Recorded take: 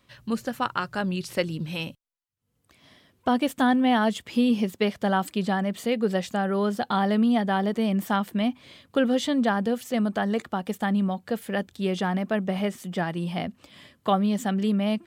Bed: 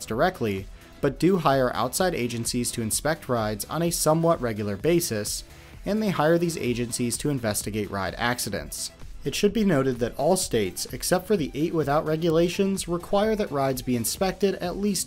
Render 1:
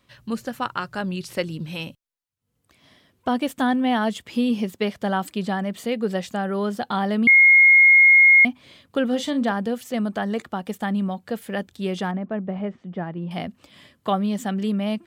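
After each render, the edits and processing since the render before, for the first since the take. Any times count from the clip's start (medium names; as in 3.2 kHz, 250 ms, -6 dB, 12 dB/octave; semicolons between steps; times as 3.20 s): 7.27–8.45 s: bleep 2.15 kHz -9 dBFS; 9.08–9.52 s: doubling 40 ms -12 dB; 12.11–13.31 s: tape spacing loss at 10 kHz 44 dB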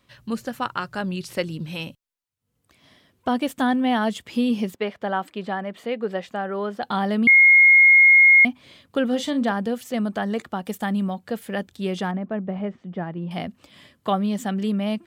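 4.75–6.83 s: tone controls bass -10 dB, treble -14 dB; 10.65–11.11 s: treble shelf 6.5 kHz +6.5 dB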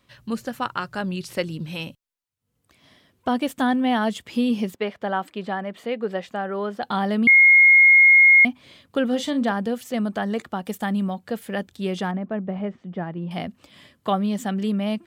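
no audible change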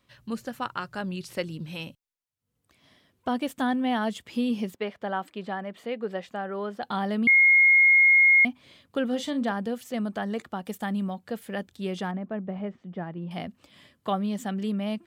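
trim -5 dB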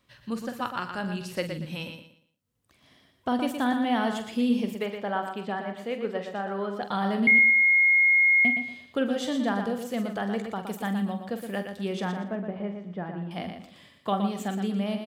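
doubling 45 ms -10 dB; on a send: feedback delay 118 ms, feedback 29%, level -7 dB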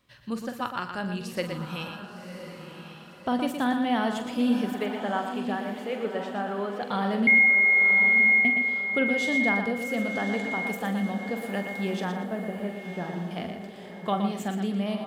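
echo that smears into a reverb 1068 ms, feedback 43%, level -9 dB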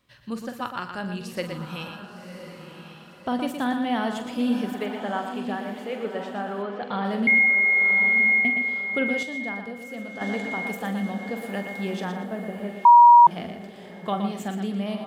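6.62–7.05 s: low-pass 4 kHz; 9.23–10.21 s: gain -7.5 dB; 12.85–13.27 s: bleep 955 Hz -7.5 dBFS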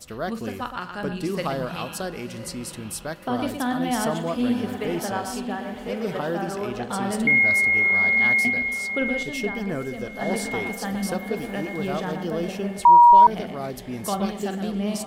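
add bed -7.5 dB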